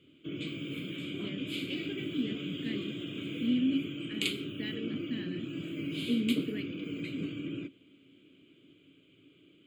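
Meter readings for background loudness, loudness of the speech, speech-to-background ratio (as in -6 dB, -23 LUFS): -37.5 LUFS, -36.5 LUFS, 1.0 dB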